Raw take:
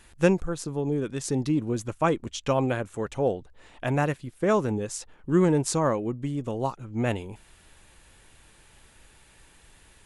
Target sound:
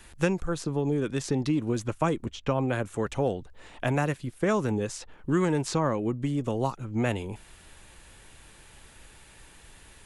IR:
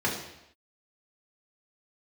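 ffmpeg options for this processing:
-filter_complex "[0:a]acrossover=split=330|910|4900[a][b][c][d];[a]acompressor=threshold=-30dB:ratio=4[e];[b]acompressor=threshold=-34dB:ratio=4[f];[c]acompressor=threshold=-34dB:ratio=4[g];[d]acompressor=threshold=-48dB:ratio=4[h];[e][f][g][h]amix=inputs=4:normalize=0,asettb=1/sr,asplit=3[i][j][k];[i]atrim=end=2.254[l];[j]atrim=start=2.25:end=2.73,asetpts=PTS-STARTPTS,afade=t=in:d=0.004:c=qsin,afade=t=out:st=0.476:d=0.004:c=qsin,highshelf=f=2.6k:g=-10.5[m];[k]atrim=start=2.726[n];[l][m]acrossfade=d=0.004:c1=hsin:c2=qsin[o];[o][n]acrossfade=d=0.004:c1=qsin:c2=hsin,volume=3.5dB"

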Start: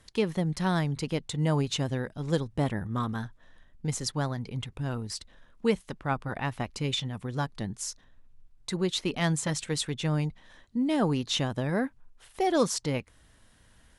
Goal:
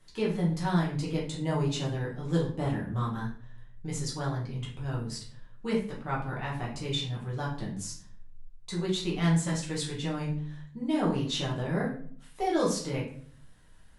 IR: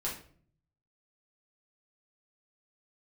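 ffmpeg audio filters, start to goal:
-filter_complex "[1:a]atrim=start_sample=2205,asetrate=41895,aresample=44100[a];[0:a][a]afir=irnorm=-1:irlink=0,volume=-5.5dB"

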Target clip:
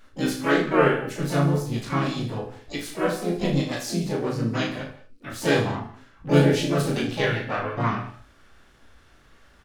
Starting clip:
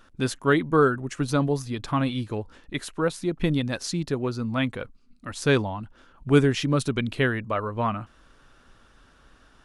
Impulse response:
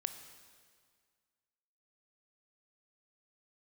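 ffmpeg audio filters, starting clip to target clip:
-filter_complex "[0:a]flanger=delay=17:depth=5.5:speed=1.8,asplit=4[a][b][c][d];[b]asetrate=52444,aresample=44100,atempo=0.840896,volume=-3dB[e];[c]asetrate=66075,aresample=44100,atempo=0.66742,volume=-9dB[f];[d]asetrate=88200,aresample=44100,atempo=0.5,volume=-10dB[g];[a][e][f][g]amix=inputs=4:normalize=0,aecho=1:1:35|77:0.631|0.282[h];[1:a]atrim=start_sample=2205,afade=t=out:st=0.25:d=0.01,atrim=end_sample=11466[i];[h][i]afir=irnorm=-1:irlink=0"

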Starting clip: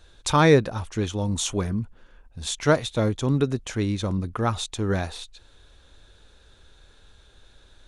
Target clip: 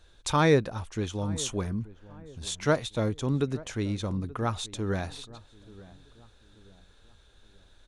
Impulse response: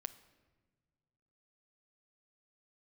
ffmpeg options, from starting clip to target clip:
-filter_complex "[0:a]asplit=2[a][b];[b]adelay=881,lowpass=f=1.2k:p=1,volume=-19dB,asplit=2[c][d];[d]adelay=881,lowpass=f=1.2k:p=1,volume=0.42,asplit=2[e][f];[f]adelay=881,lowpass=f=1.2k:p=1,volume=0.42[g];[a][c][e][g]amix=inputs=4:normalize=0,volume=-5dB"

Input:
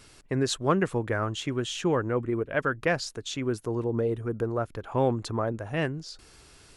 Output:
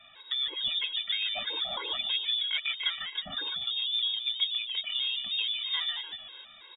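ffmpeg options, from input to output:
-filter_complex "[0:a]acompressor=threshold=-32dB:ratio=6,asplit=6[a][b][c][d][e][f];[b]adelay=147,afreqshift=120,volume=-4.5dB[g];[c]adelay=294,afreqshift=240,volume=-12.2dB[h];[d]adelay=441,afreqshift=360,volume=-20dB[i];[e]adelay=588,afreqshift=480,volume=-27.7dB[j];[f]adelay=735,afreqshift=600,volume=-35.5dB[k];[a][g][h][i][j][k]amix=inputs=6:normalize=0,lowpass=f=3.2k:t=q:w=0.5098,lowpass=f=3.2k:t=q:w=0.6013,lowpass=f=3.2k:t=q:w=0.9,lowpass=f=3.2k:t=q:w=2.563,afreqshift=-3800,afftfilt=real='re*gt(sin(2*PI*3.1*pts/sr)*(1-2*mod(floor(b*sr/1024/280),2)),0)':imag='im*gt(sin(2*PI*3.1*pts/sr)*(1-2*mod(floor(b*sr/1024/280),2)),0)':win_size=1024:overlap=0.75,volume=6dB"

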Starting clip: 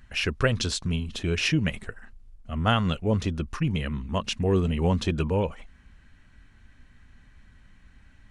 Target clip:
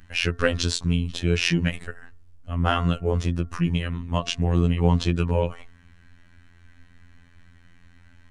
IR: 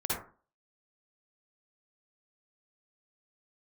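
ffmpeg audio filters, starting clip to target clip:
-filter_complex "[0:a]asettb=1/sr,asplit=3[a][b][c];[a]atrim=end=2.514[d];[b]atrim=start=2.51:end=3.63,asetpts=PTS-STARTPTS,afade=t=in:d=0.004:c=qsin,afade=t=out:st=1.116:d=0.004:c=qsin,equalizer=f=3.8k:t=o:w=1:g=-4.5[e];[c]atrim=start=3.626[f];[d][e]acrossfade=d=0.004:c1=hsin:c2=qsin[g];[g][f]acrossfade=d=0.004:c1=qsin:c2=hsin,asettb=1/sr,asplit=3[h][i][j];[h]atrim=end=4.254[k];[i]atrim=start=4.25:end=5.15,asetpts=PTS-STARTPTS,afade=t=in:d=0.004:c=qsin,afade=t=out:st=0.896:d=0.004:c=qsin,lowpass=9k[l];[j]atrim=start=5.146[m];[k][l]acrossfade=d=0.004:c1=hsin:c2=qsin[n];[n][m]acrossfade=d=0.004:c1=qsin:c2=hsin,bandreject=f=226.8:t=h:w=4,bandreject=f=453.6:t=h:w=4,bandreject=f=680.4:t=h:w=4,bandreject=f=907.2:t=h:w=4,bandreject=f=1.134k:t=h:w=4,bandreject=f=1.3608k:t=h:w=4,bandreject=f=1.5876k:t=h:w=4,bandreject=f=1.8144k:t=h:w=4,acontrast=70,afftfilt=real='hypot(re,im)*cos(PI*b)':imag='0':win_size=2048:overlap=0.75,volume=-1dB"

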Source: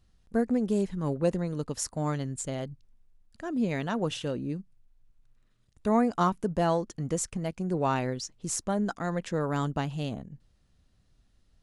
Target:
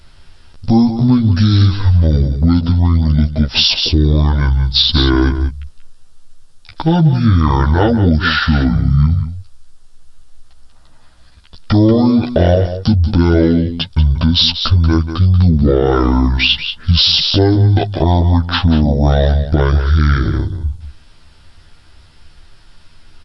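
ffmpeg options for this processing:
-filter_complex "[0:a]aecho=1:1:6.3:0.82,acompressor=threshold=-29dB:ratio=6,aexciter=amount=1.6:drive=2.9:freq=2.3k,asplit=2[a][b];[b]aecho=0:1:93:0.266[c];[a][c]amix=inputs=2:normalize=0,asetrate=22050,aresample=44100,alimiter=level_in=22.5dB:limit=-1dB:release=50:level=0:latency=1,volume=-1dB"

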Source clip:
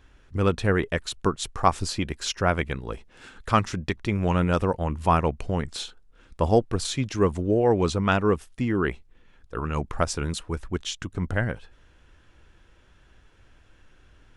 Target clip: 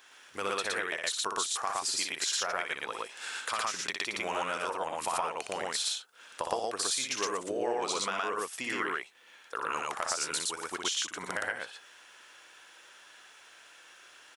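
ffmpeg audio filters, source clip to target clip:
-filter_complex "[0:a]highpass=740,highshelf=f=4.3k:g=10.5,acontrast=45,alimiter=limit=-10dB:level=0:latency=1:release=253,acompressor=threshold=-32dB:ratio=3,asplit=2[a][b];[b]aecho=0:1:61.22|116.6:0.562|1[c];[a][c]amix=inputs=2:normalize=0,volume=-2dB"

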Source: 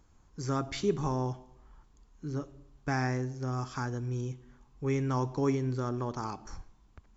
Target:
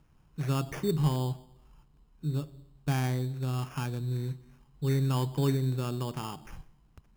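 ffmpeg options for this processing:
-filter_complex "[0:a]asettb=1/sr,asplit=3[a][b][c];[a]atrim=end=1.164[d];[b]atrim=start=1.16:end=3.34,asetpts=PTS-STARTPTS,afade=t=in:d=0.004:c=qsin,afade=t=out:st=2.176:d=0.004:c=qsin,highshelf=f=3.9k:g=-11.5[e];[c]atrim=start=3.336[f];[d][e]acrossfade=d=0.004:c1=hsin:c2=qsin[g];[g][f]acrossfade=d=0.004:c1=qsin:c2=hsin,acrusher=samples=11:mix=1:aa=0.000001,equalizer=f=150:t=o:w=0.4:g=12.5,volume=-2dB"

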